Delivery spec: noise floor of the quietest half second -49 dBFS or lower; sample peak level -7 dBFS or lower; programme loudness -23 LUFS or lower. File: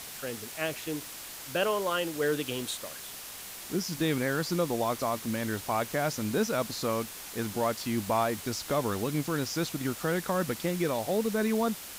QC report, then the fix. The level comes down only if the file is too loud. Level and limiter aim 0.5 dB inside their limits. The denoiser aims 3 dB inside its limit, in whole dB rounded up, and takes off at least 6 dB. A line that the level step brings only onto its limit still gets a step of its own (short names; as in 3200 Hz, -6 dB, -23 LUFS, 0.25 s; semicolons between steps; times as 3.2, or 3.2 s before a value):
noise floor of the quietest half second -43 dBFS: fail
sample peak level -15.0 dBFS: OK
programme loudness -31.0 LUFS: OK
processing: denoiser 9 dB, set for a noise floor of -43 dBFS